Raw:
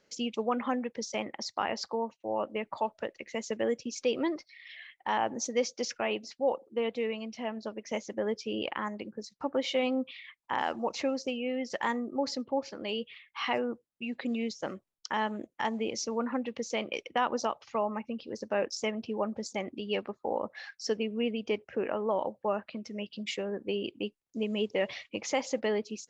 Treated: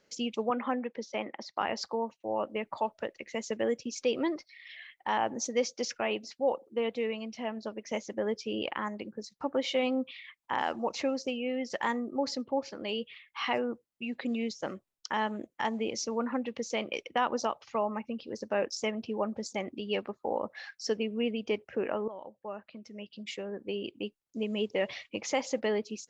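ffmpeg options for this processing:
-filter_complex "[0:a]asettb=1/sr,asplit=3[a][b][c];[a]atrim=end=0.504[d];[b]atrim=start=0.5:end=1.61,asetpts=PTS-STARTPTS,afade=t=in:d=0.004:c=qsin,afade=t=out:st=1.106:d=0.004:c=qsin,highpass=200,lowpass=3.3k[e];[c]atrim=start=1.606[f];[d][e]acrossfade=d=0.004:c1=hsin:c2=qsin[g];[g][f]acrossfade=d=0.004:c1=qsin:c2=hsin,asplit=2[h][i];[h]atrim=end=22.08,asetpts=PTS-STARTPTS,afade=t=out:st=22.076:d=0.004:c=hsin:silence=0.16788[j];[i]atrim=start=22.08,asetpts=PTS-STARTPTS,afade=t=in:d=3.5:c=qsin:silence=0.16788[k];[j][k]concat=n=2:v=0:a=1"

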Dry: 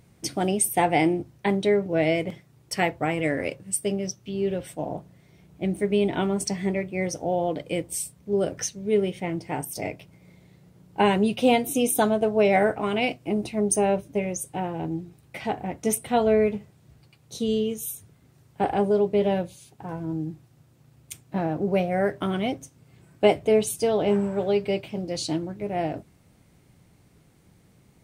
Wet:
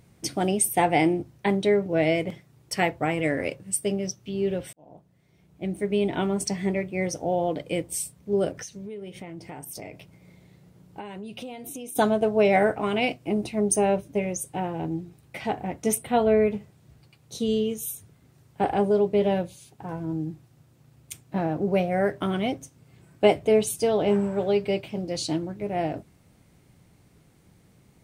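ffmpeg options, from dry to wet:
-filter_complex "[0:a]asplit=3[a][b][c];[a]afade=t=out:st=8.51:d=0.02[d];[b]acompressor=threshold=-34dB:ratio=10:attack=3.2:release=140:knee=1:detection=peak,afade=t=in:st=8.51:d=0.02,afade=t=out:st=11.95:d=0.02[e];[c]afade=t=in:st=11.95:d=0.02[f];[d][e][f]amix=inputs=3:normalize=0,asettb=1/sr,asplit=3[g][h][i];[g]atrim=end=16.024[j];[h]atrim=start=16.02:end=16.51,asetpts=PTS-STARTPTS,afade=t=in:d=0.004:c=qsin,afade=t=out:st=0.486:d=0.004:c=qsin,equalizer=f=6.1k:t=o:w=0.72:g=-11[k];[i]atrim=start=16.506[l];[j][k]acrossfade=d=0.004:c1=hsin:c2=qsin[m];[m][l]acrossfade=d=0.004:c1=qsin:c2=hsin,asplit=2[n][o];[n]atrim=end=4.73,asetpts=PTS-STARTPTS,afade=t=out:st=4.726:d=0.004:c=hsin[p];[o]atrim=start=4.73,asetpts=PTS-STARTPTS,afade=t=in:d=2.08:c=qsin[q];[p][q]concat=n=2:v=0:a=1"

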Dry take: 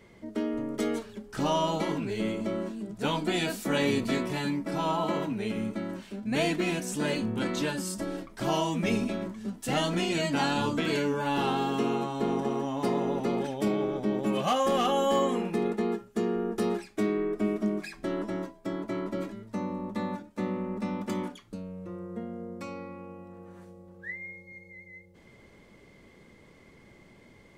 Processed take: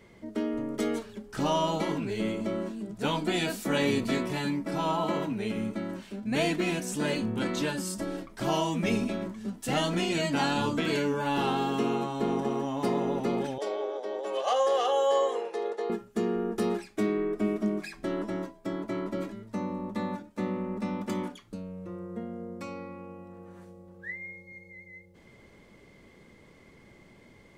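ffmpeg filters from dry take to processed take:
-filter_complex "[0:a]asettb=1/sr,asplit=3[a][b][c];[a]atrim=end=13.584[d];[b]atrim=start=13.58:end=15.9,asetpts=PTS-STARTPTS,afade=t=in:d=0.004:c=qsin,afade=t=out:st=2.316:d=0.004:c=qsin,highpass=f=480:w=0.5412,highpass=f=480:w=1.3066,equalizer=f=480:t=q:w=4:g=8,equalizer=f=1.3k:t=q:w=4:g=-4,equalizer=f=2.4k:t=q:w=4:g=-9,equalizer=f=8.2k:t=q:w=4:g=-7,lowpass=f=9.2k:w=0.5412,lowpass=f=9.2k:w=1.3066[e];[c]atrim=start=15.896[f];[d][e]acrossfade=d=0.004:c1=hsin:c2=qsin[g];[g][f]acrossfade=d=0.004:c1=qsin:c2=hsin"

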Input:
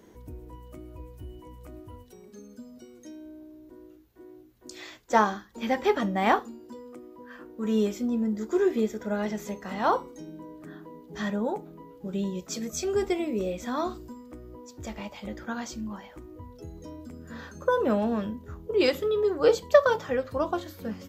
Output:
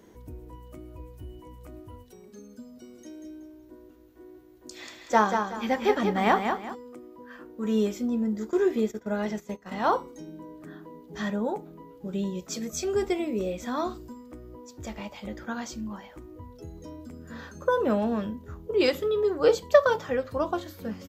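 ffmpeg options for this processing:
-filter_complex "[0:a]asplit=3[a][b][c];[a]afade=t=out:st=2.82:d=0.02[d];[b]aecho=1:1:187|374|561|748:0.501|0.15|0.0451|0.0135,afade=t=in:st=2.82:d=0.02,afade=t=out:st=6.74:d=0.02[e];[c]afade=t=in:st=6.74:d=0.02[f];[d][e][f]amix=inputs=3:normalize=0,asplit=3[g][h][i];[g]afade=t=out:st=8.5:d=0.02[j];[h]agate=range=-14dB:threshold=-37dB:ratio=16:release=100:detection=peak,afade=t=in:st=8.5:d=0.02,afade=t=out:st=9.84:d=0.02[k];[i]afade=t=in:st=9.84:d=0.02[l];[j][k][l]amix=inputs=3:normalize=0"

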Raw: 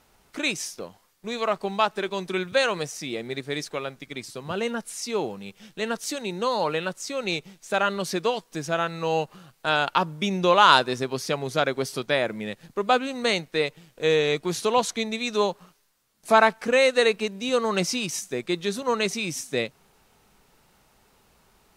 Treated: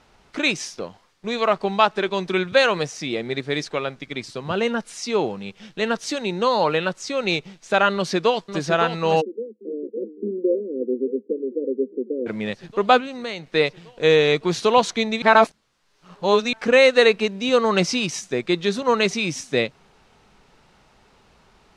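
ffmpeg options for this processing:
-filter_complex "[0:a]asplit=2[a][b];[b]afade=t=in:st=7.92:d=0.01,afade=t=out:st=8.6:d=0.01,aecho=0:1:560|1120|1680|2240|2800|3360|3920|4480|5040|5600|6160|6720:0.421697|0.316272|0.237204|0.177903|0.133427|0.100071|0.0750529|0.0562897|0.0422173|0.0316629|0.0237472|0.0178104[c];[a][c]amix=inputs=2:normalize=0,asplit=3[d][e][f];[d]afade=t=out:st=9.2:d=0.02[g];[e]asuperpass=centerf=330:order=20:qfactor=1.1,afade=t=in:st=9.2:d=0.02,afade=t=out:st=12.26:d=0.02[h];[f]afade=t=in:st=12.26:d=0.02[i];[g][h][i]amix=inputs=3:normalize=0,asettb=1/sr,asplit=3[j][k][l];[j]atrim=end=13.004[m];[k]atrim=start=13:end=13.51,asetpts=PTS-STARTPTS,afade=t=in:d=0.004:c=qsin,afade=t=out:st=0.506:d=0.004:c=qsin,acompressor=threshold=-37dB:ratio=2.5:attack=3.2:release=140:knee=1:detection=peak[n];[l]atrim=start=13.506[o];[m][n]acrossfade=d=0.004:c1=hsin:c2=qsin[p];[p][o]acrossfade=d=0.004:c1=qsin:c2=hsin,asplit=3[q][r][s];[q]atrim=end=15.222[t];[r]atrim=start=15.218:end=16.532,asetpts=PTS-STARTPTS,areverse[u];[s]atrim=start=16.528[v];[t][u]acrossfade=d=0.004:c1=hsin:c2=hsin[w];[w][v]acrossfade=d=0.004:c1=hsin:c2=hsin,lowpass=5.3k,alimiter=level_in=6.5dB:limit=-1dB:release=50:level=0:latency=1,volume=-1dB"

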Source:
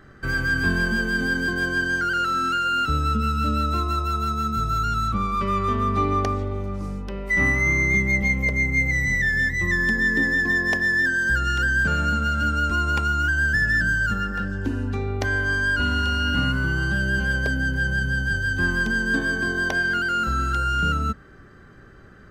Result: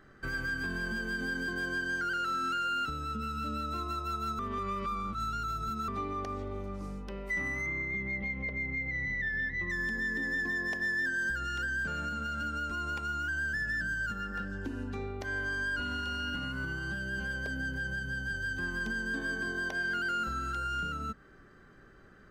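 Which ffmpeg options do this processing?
-filter_complex "[0:a]asettb=1/sr,asplit=3[a][b][c];[a]atrim=end=7.664[d];[b]atrim=start=7.66:end=9.7,asetpts=PTS-STARTPTS,afade=t=in:d=0.004:c=qsin,afade=t=out:st=2.036:d=0.004:c=qsin,lowpass=f=4k:w=0.5412,lowpass=f=4k:w=1.3066[e];[c]atrim=start=9.696[f];[d][e]acrossfade=d=0.004:c1=hsin:c2=qsin[g];[g][f]acrossfade=d=0.004:c1=qsin:c2=hsin,asplit=3[h][i][j];[h]atrim=end=4.392[k];[i]atrim=start=4.388:end=5.882,asetpts=PTS-STARTPTS,areverse[l];[j]atrim=start=5.878[m];[k][l]acrossfade=d=0.004:c1=hsin:c2=hsin[n];[n][m]acrossfade=d=0.004:c1=hsin:c2=hsin,alimiter=limit=-18dB:level=0:latency=1:release=142,equalizer=f=88:t=o:w=1.5:g=-6.5,volume=-7.5dB"

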